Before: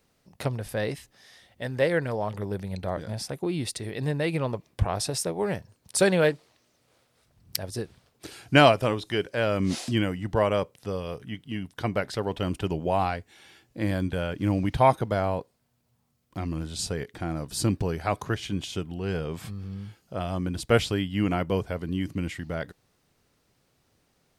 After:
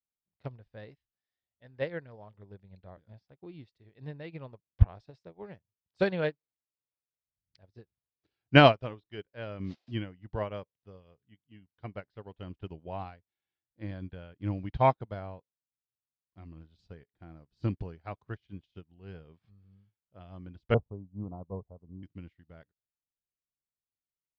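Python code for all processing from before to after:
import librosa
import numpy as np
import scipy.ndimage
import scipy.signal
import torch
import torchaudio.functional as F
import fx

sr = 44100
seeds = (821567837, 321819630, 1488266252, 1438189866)

y = fx.chain(x, sr, fx.steep_lowpass(hz=1100.0, slope=72),
    fx.peak_eq(hz=320.0, db=-6.5, octaves=0.31), at=(20.74, 22.03))
y = scipy.signal.sosfilt(scipy.signal.butter(4, 4500.0, 'lowpass', fs=sr, output='sos'), y)
y = fx.low_shelf(y, sr, hz=97.0, db=10.0)
y = fx.upward_expand(y, sr, threshold_db=-40.0, expansion=2.5)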